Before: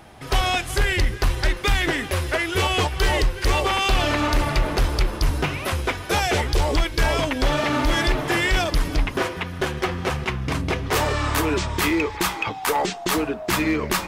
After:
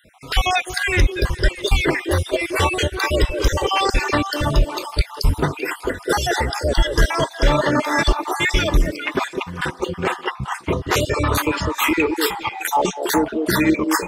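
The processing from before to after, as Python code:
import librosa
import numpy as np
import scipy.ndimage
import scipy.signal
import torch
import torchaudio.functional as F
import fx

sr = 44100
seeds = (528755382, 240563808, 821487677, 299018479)

y = fx.spec_dropout(x, sr, seeds[0], share_pct=52)
y = fx.echo_stepped(y, sr, ms=204, hz=420.0, octaves=1.4, feedback_pct=70, wet_db=-2.5)
y = fx.noise_reduce_blind(y, sr, reduce_db=7)
y = y * librosa.db_to_amplitude(5.5)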